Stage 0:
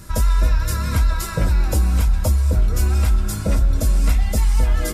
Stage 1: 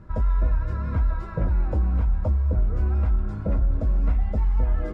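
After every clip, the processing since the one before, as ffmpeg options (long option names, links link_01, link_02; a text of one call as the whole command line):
ffmpeg -i in.wav -af "lowpass=1200,volume=-5dB" out.wav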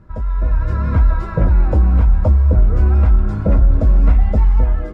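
ffmpeg -i in.wav -af "dynaudnorm=framelen=210:gausssize=5:maxgain=11.5dB" out.wav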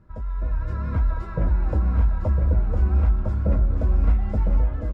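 ffmpeg -i in.wav -af "aecho=1:1:1006:0.562,volume=-9dB" out.wav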